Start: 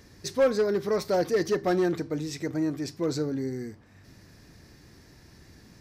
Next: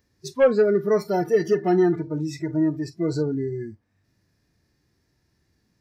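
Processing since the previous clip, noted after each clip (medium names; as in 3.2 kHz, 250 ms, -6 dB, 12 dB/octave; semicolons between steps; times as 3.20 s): spectral noise reduction 20 dB; harmonic-percussive split percussive -9 dB; trim +6.5 dB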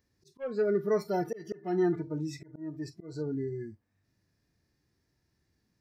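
slow attack 329 ms; trim -7 dB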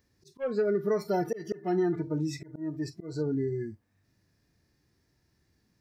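compression, threshold -28 dBFS, peak gain reduction 6 dB; trim +4.5 dB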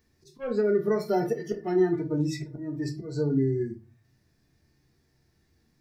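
reverberation RT60 0.30 s, pre-delay 3 ms, DRR 3.5 dB; trim +1 dB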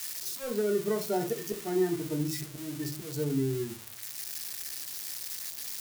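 zero-crossing glitches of -22.5 dBFS; trim -4.5 dB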